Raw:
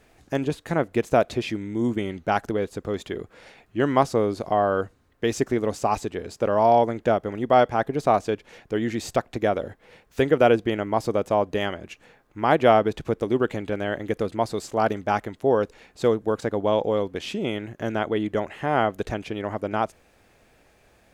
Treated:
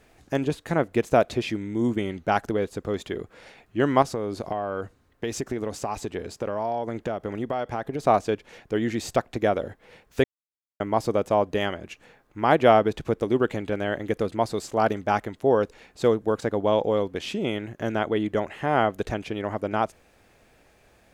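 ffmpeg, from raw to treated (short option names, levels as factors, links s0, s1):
-filter_complex "[0:a]asettb=1/sr,asplit=3[s0][s1][s2];[s0]atrim=end=4.024[s3];[s1]atrim=start=4.02:end=8.05,asetpts=PTS-STARTPTS,afade=t=in:d=0.004:c=qsin,afade=t=out:st=4.026:d=0.004:c=qsin,acompressor=threshold=0.0631:ratio=6:attack=3.2:release=140:knee=1:detection=peak[s4];[s2]atrim=start=8.046[s5];[s3][s4]acrossfade=d=0.004:c1=hsin:c2=qsin[s6];[s6][s5]acrossfade=d=0.004:c1=qsin:c2=hsin,asplit=3[s7][s8][s9];[s7]atrim=end=10.24,asetpts=PTS-STARTPTS,afade=t=out:st=10.236:d=0.004:c=hsin[s10];[s8]atrim=start=10.24:end=10.8,asetpts=PTS-STARTPTS,volume=0[s11];[s9]atrim=start=10.8,asetpts=PTS-STARTPTS,afade=t=in:d=0.004:c=hsin[s12];[s10][s11][s12]concat=n=3:v=0:a=1"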